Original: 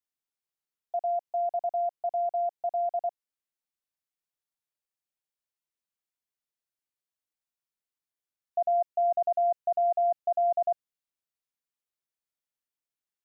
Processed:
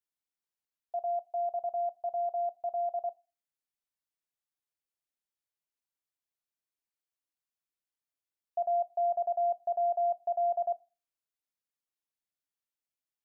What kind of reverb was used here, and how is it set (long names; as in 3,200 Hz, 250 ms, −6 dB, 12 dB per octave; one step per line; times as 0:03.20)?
feedback delay network reverb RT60 0.32 s, low-frequency decay 1.55×, high-frequency decay 0.85×, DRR 17 dB
level −4 dB